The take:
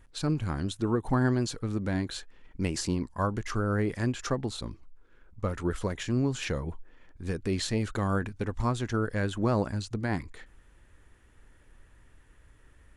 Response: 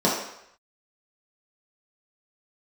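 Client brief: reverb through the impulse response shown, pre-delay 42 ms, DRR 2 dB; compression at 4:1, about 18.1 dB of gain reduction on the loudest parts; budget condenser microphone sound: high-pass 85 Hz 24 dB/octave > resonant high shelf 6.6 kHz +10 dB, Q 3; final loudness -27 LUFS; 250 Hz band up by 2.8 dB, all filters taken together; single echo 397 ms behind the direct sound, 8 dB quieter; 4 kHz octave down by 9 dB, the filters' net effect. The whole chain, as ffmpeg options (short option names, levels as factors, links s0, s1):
-filter_complex "[0:a]equalizer=f=250:t=o:g=3.5,equalizer=f=4000:t=o:g=-6,acompressor=threshold=0.00708:ratio=4,aecho=1:1:397:0.398,asplit=2[s0][s1];[1:a]atrim=start_sample=2205,adelay=42[s2];[s1][s2]afir=irnorm=-1:irlink=0,volume=0.112[s3];[s0][s3]amix=inputs=2:normalize=0,highpass=f=85:w=0.5412,highpass=f=85:w=1.3066,highshelf=f=6600:t=q:w=3:g=10,volume=4.22"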